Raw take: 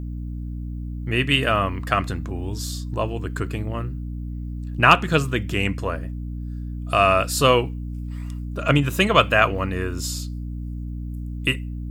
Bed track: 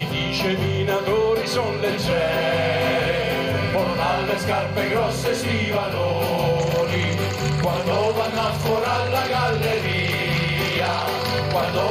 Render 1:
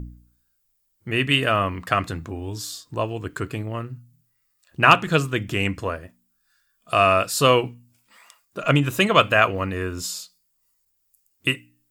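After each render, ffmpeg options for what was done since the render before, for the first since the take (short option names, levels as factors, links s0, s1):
-af "bandreject=f=60:t=h:w=4,bandreject=f=120:t=h:w=4,bandreject=f=180:t=h:w=4,bandreject=f=240:t=h:w=4,bandreject=f=300:t=h:w=4"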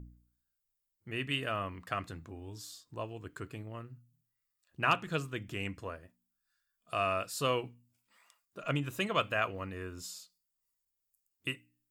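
-af "volume=0.188"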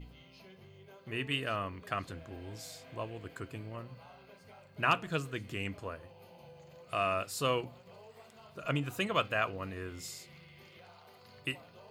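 -filter_complex "[1:a]volume=0.02[s0];[0:a][s0]amix=inputs=2:normalize=0"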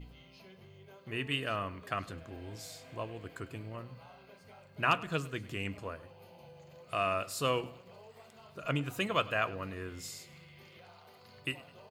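-af "aecho=1:1:102|204|306:0.1|0.043|0.0185"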